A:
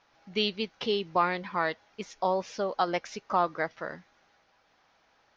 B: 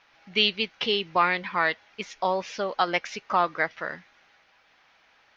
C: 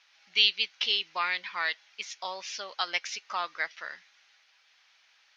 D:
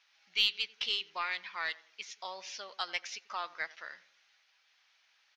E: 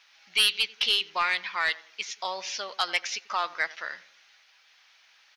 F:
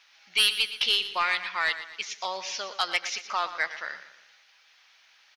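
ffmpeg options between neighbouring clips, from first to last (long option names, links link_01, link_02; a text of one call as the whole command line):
ffmpeg -i in.wav -af "equalizer=frequency=2400:width=0.76:gain=10" out.wav
ffmpeg -i in.wav -af "bandpass=frequency=6100:width_type=q:width=0.8:csg=0,volume=4.5dB" out.wav
ffmpeg -i in.wav -filter_complex "[0:a]asplit=2[link_01][link_02];[link_02]adelay=90,lowpass=frequency=1200:poles=1,volume=-17dB,asplit=2[link_03][link_04];[link_04]adelay=90,lowpass=frequency=1200:poles=1,volume=0.45,asplit=2[link_05][link_06];[link_06]adelay=90,lowpass=frequency=1200:poles=1,volume=0.45,asplit=2[link_07][link_08];[link_08]adelay=90,lowpass=frequency=1200:poles=1,volume=0.45[link_09];[link_01][link_03][link_05][link_07][link_09]amix=inputs=5:normalize=0,aeval=exprs='0.376*(cos(1*acos(clip(val(0)/0.376,-1,1)))-cos(1*PI/2))+0.00841*(cos(3*acos(clip(val(0)/0.376,-1,1)))-cos(3*PI/2))+0.0106*(cos(4*acos(clip(val(0)/0.376,-1,1)))-cos(4*PI/2))+0.00531*(cos(5*acos(clip(val(0)/0.376,-1,1)))-cos(5*PI/2))+0.00237*(cos(7*acos(clip(val(0)/0.376,-1,1)))-cos(7*PI/2))':channel_layout=same,volume=-5.5dB" out.wav
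ffmpeg -i in.wav -af "aeval=exprs='0.2*sin(PI/2*2*val(0)/0.2)':channel_layout=same" out.wav
ffmpeg -i in.wav -af "aecho=1:1:118|236|354|472:0.224|0.0985|0.0433|0.0191" out.wav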